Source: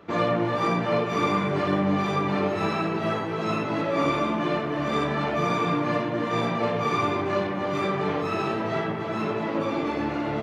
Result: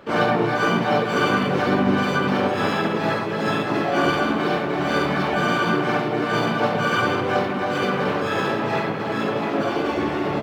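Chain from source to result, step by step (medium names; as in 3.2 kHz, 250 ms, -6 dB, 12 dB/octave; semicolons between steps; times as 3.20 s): median filter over 5 samples; harmony voices +4 st -2 dB, +5 st -7 dB; trim +1.5 dB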